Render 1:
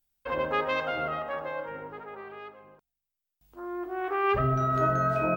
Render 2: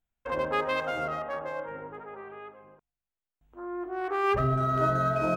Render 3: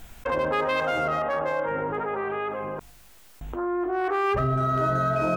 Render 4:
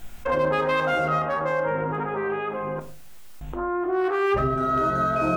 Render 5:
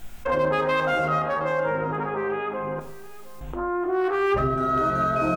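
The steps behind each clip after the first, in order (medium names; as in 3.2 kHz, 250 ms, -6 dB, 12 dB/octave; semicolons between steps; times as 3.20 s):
local Wiener filter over 9 samples
level flattener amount 70%
reverberation RT60 0.40 s, pre-delay 6 ms, DRR 5.5 dB
delay 715 ms -18.5 dB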